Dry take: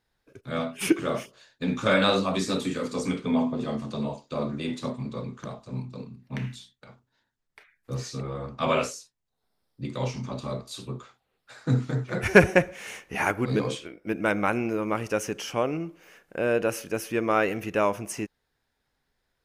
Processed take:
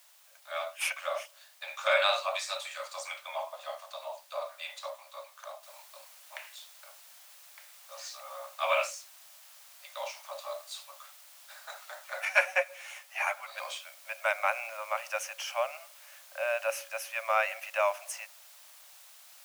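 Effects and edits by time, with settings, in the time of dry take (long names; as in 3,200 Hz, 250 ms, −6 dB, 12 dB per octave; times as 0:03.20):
0:05.63: noise floor change −57 dB −51 dB
0:12.25–0:13.58: string-ensemble chorus
whole clip: Chebyshev high-pass filter 550 Hz, order 10; dynamic equaliser 2,400 Hz, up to +6 dB, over −47 dBFS, Q 4.7; level −2.5 dB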